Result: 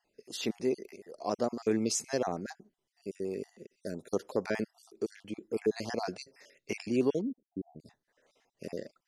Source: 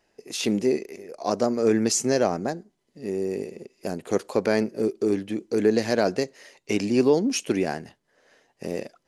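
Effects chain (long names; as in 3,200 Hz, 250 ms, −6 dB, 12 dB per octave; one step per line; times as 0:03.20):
time-frequency cells dropped at random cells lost 40%
0:07.21–0:07.80: Gaussian smoothing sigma 21 samples
level −7.5 dB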